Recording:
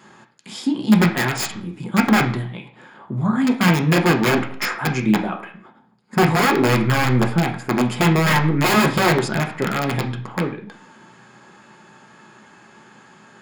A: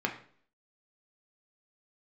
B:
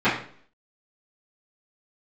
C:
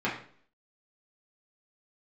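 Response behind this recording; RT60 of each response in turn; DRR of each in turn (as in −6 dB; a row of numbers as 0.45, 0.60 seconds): A; 0.50, 0.50, 0.50 seconds; 1.5, −16.5, −7.5 decibels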